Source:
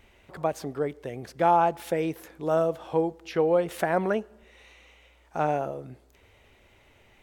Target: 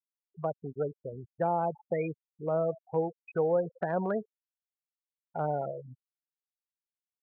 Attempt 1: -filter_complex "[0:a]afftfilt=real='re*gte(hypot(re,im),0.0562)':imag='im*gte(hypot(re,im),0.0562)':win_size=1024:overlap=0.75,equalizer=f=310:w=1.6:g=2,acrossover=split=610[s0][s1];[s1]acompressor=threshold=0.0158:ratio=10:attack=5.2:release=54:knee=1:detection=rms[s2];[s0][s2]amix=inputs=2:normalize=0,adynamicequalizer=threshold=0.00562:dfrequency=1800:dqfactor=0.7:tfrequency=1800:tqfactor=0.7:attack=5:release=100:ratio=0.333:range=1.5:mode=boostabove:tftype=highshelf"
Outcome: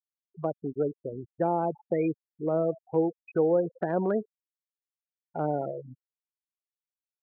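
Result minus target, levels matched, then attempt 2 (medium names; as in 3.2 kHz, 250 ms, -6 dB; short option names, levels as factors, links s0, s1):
250 Hz band +4.0 dB
-filter_complex "[0:a]afftfilt=real='re*gte(hypot(re,im),0.0562)':imag='im*gte(hypot(re,im),0.0562)':win_size=1024:overlap=0.75,equalizer=f=310:w=1.6:g=-8.5,acrossover=split=610[s0][s1];[s1]acompressor=threshold=0.0158:ratio=10:attack=5.2:release=54:knee=1:detection=rms[s2];[s0][s2]amix=inputs=2:normalize=0,adynamicequalizer=threshold=0.00562:dfrequency=1800:dqfactor=0.7:tfrequency=1800:tqfactor=0.7:attack=5:release=100:ratio=0.333:range=1.5:mode=boostabove:tftype=highshelf"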